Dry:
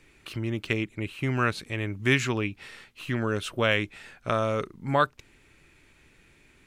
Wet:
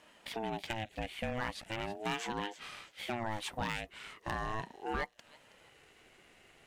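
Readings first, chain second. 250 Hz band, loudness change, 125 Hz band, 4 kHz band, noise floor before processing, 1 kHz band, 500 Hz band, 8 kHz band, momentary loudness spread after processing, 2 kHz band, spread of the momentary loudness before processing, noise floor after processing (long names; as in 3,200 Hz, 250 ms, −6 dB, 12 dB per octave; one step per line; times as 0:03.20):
−12.5 dB, −11.0 dB, −15.0 dB, −7.5 dB, −60 dBFS, −7.0 dB, −12.0 dB, −7.0 dB, 7 LU, −11.0 dB, 13 LU, −63 dBFS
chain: low-shelf EQ 170 Hz −5.5 dB
downward compressor 3 to 1, threshold −33 dBFS, peak gain reduction 12 dB
delay with a high-pass on its return 323 ms, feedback 33%, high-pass 2,900 Hz, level −11.5 dB
hard clipping −26.5 dBFS, distortion −17 dB
ring modulator whose carrier an LFO sweeps 490 Hz, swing 25%, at 0.4 Hz
level +1 dB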